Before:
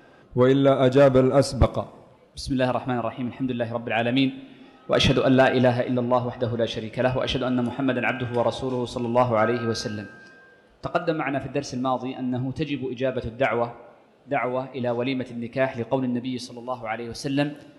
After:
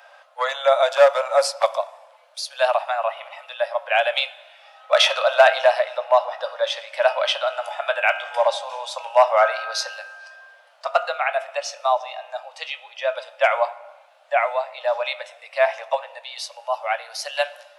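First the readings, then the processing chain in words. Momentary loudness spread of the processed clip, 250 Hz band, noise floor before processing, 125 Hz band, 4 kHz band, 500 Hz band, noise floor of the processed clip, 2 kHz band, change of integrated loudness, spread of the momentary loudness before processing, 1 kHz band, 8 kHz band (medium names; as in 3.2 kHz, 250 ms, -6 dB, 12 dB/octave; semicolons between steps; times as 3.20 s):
16 LU, under -40 dB, -53 dBFS, under -40 dB, +6.0 dB, +2.5 dB, -52 dBFS, +6.0 dB, +2.5 dB, 12 LU, +6.0 dB, +6.0 dB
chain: steep high-pass 560 Hz 96 dB/octave; trim +6 dB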